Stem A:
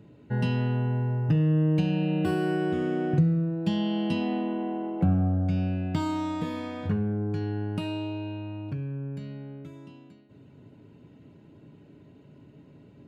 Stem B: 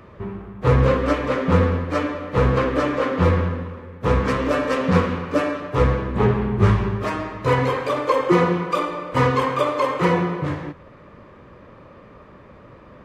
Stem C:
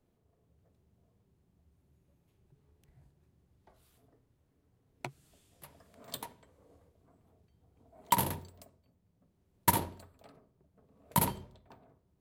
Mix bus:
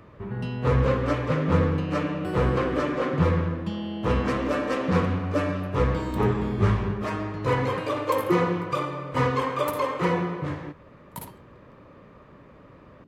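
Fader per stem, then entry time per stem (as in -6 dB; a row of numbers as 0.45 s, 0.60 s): -5.0 dB, -5.5 dB, -10.5 dB; 0.00 s, 0.00 s, 0.00 s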